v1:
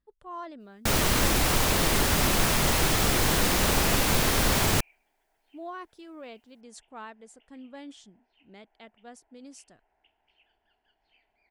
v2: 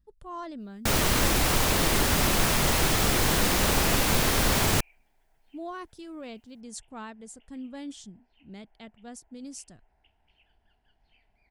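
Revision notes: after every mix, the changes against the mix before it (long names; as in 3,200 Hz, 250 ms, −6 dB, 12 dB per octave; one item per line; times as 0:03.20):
speech: add bass and treble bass +14 dB, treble +9 dB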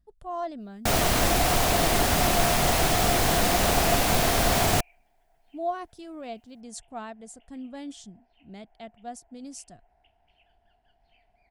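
master: add parametric band 700 Hz +13 dB 0.23 octaves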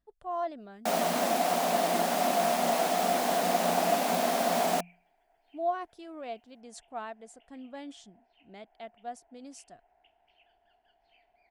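speech: add bass and treble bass −14 dB, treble −9 dB
first sound: add Chebyshev high-pass with heavy ripple 170 Hz, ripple 9 dB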